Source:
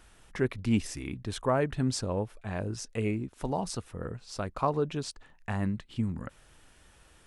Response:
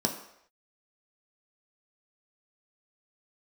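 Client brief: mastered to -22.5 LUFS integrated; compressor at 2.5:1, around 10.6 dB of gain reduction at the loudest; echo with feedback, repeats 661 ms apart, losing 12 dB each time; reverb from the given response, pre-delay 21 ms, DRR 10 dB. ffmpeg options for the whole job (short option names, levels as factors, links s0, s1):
-filter_complex "[0:a]acompressor=threshold=0.0126:ratio=2.5,aecho=1:1:661|1322|1983:0.251|0.0628|0.0157,asplit=2[s0][s1];[1:a]atrim=start_sample=2205,adelay=21[s2];[s1][s2]afir=irnorm=-1:irlink=0,volume=0.133[s3];[s0][s3]amix=inputs=2:normalize=0,volume=6.68"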